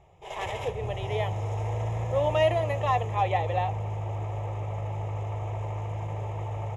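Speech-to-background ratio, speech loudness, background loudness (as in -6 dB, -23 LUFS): 4.0 dB, -29.0 LUFS, -33.0 LUFS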